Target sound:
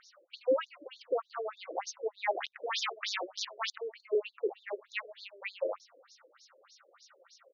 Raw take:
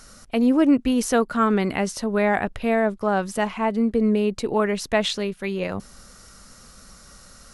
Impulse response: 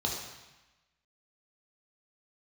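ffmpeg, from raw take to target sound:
-filter_complex "[0:a]equalizer=frequency=530:width=5.6:gain=6,asplit=2[link_01][link_02];[link_02]adelay=115,lowpass=frequency=2700:poles=1,volume=-22.5dB,asplit=2[link_03][link_04];[link_04]adelay=115,lowpass=frequency=2700:poles=1,volume=0.38,asplit=2[link_05][link_06];[link_06]adelay=115,lowpass=frequency=2700:poles=1,volume=0.38[link_07];[link_01][link_03][link_05][link_07]amix=inputs=4:normalize=0,flanger=delay=3.7:depth=4.2:regen=49:speed=1:shape=triangular,asettb=1/sr,asplit=3[link_08][link_09][link_10];[link_08]atrim=end=0.714[link_11];[link_09]atrim=start=0.71:end=1.64,asetpts=PTS-STARTPTS,afade=type=in:duration=0.004:curve=qsin,afade=type=out:start_time=0.926:duration=0.004:curve=qsin,acompressor=threshold=-24dB:ratio=4[link_12];[link_10]atrim=start=1.636[link_13];[link_11][link_12]acrossfade=duration=0.004:curve1=hsin:curve2=qsin[link_14];[link_14][link_13]acrossfade=duration=0.004:curve1=qsin:curve2=hsin,asettb=1/sr,asplit=3[link_15][link_16][link_17];[link_15]atrim=end=2.314[link_18];[link_16]atrim=start=2.31:end=3.78,asetpts=PTS-STARTPTS,afade=type=in:duration=0.004:curve=qsin,afade=type=out:start_time=1.466:duration=0.004:curve=qsin,aeval=exprs='(mod(12.6*val(0)+1,2)-1)/12.6':channel_layout=same[link_19];[link_17]atrim=start=3.776[link_20];[link_18][link_19]acrossfade=duration=0.004:curve1=hsin:curve2=qsin[link_21];[link_21][link_20]acrossfade=duration=0.004:curve1=qsin:curve2=hsin,afftfilt=real='re*between(b*sr/1024,420*pow(5000/420,0.5+0.5*sin(2*PI*3.3*pts/sr))/1.41,420*pow(5000/420,0.5+0.5*sin(2*PI*3.3*pts/sr))*1.41)':imag='im*between(b*sr/1024,420*pow(5000/420,0.5+0.5*sin(2*PI*3.3*pts/sr))/1.41,420*pow(5000/420,0.5+0.5*sin(2*PI*3.3*pts/sr))*1.41)':win_size=1024:overlap=0.75"

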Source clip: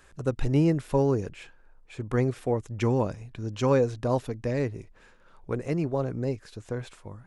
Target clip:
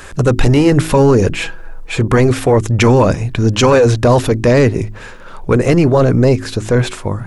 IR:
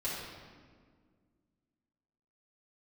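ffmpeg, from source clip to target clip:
-filter_complex "[0:a]asettb=1/sr,asplit=3[link_01][link_02][link_03];[link_01]atrim=end=1.324[link_04];[link_02]atrim=start=1.32:end=2,asetpts=PTS-STARTPTS,afade=type=in:duration=0.004:curve=qsin,afade=type=out:start_time=0.676:duration=0.004:curve=qsin,aecho=1:1:6.1:0.7,atrim=end_sample=29988[link_05];[link_03]atrim=start=1.996[link_06];[link_04][link_05]acrossfade=duration=0.004:curve1=hsin:curve2=qsin[link_07];[link_07][link_06]acrossfade=duration=0.004:curve1=qsin:curve2=hsin,apsyclip=28.5dB,bandreject=frequency=53.06:width_type=h:width=4,bandreject=frequency=106.12:width_type=h:width=4,bandreject=frequency=159.18:width_type=h:width=4,bandreject=frequency=212.24:width_type=h:width=4,bandreject=frequency=265.3:width_type=h:width=4,bandreject=frequency=318.36:width_type=h:width=4,bandreject=frequency=371.42:width_type=h:width=4,volume=-5dB"

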